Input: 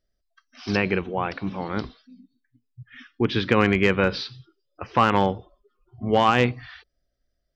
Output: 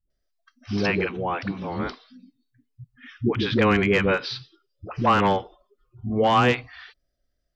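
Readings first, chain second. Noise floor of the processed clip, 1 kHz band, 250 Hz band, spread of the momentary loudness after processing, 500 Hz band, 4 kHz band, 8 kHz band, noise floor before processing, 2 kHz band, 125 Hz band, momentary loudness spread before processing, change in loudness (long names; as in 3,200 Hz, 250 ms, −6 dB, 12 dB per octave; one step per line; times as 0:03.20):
−76 dBFS, 0.0 dB, 0.0 dB, 13 LU, 0.0 dB, 0.0 dB, can't be measured, −75 dBFS, 0.0 dB, 0.0 dB, 17 LU, 0.0 dB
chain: all-pass dispersion highs, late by 103 ms, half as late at 330 Hz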